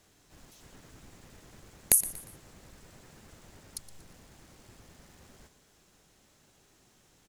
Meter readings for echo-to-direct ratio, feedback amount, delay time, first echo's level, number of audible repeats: −15.5 dB, 39%, 118 ms, −16.0 dB, 3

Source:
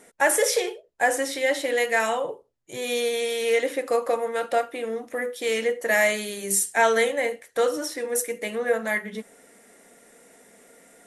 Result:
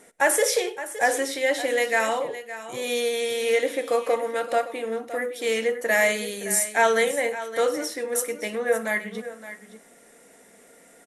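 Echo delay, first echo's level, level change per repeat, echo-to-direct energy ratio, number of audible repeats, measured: 99 ms, −23.0 dB, repeats not evenly spaced, −13.0 dB, 2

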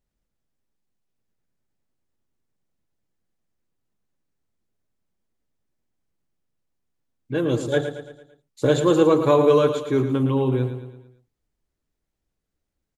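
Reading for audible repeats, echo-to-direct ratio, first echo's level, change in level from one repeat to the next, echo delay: 5, −8.5 dB, −9.5 dB, −6.5 dB, 112 ms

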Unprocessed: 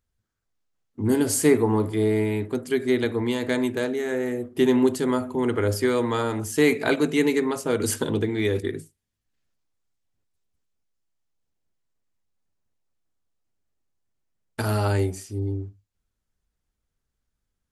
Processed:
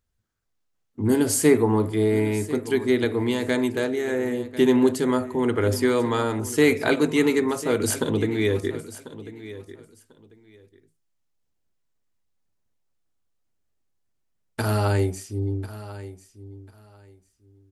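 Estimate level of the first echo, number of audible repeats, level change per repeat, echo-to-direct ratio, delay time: −15.5 dB, 2, −14.0 dB, −15.5 dB, 1,044 ms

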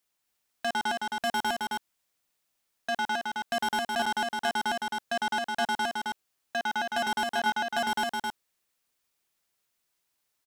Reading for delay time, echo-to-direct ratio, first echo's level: 266 ms, −3.5 dB, −3.5 dB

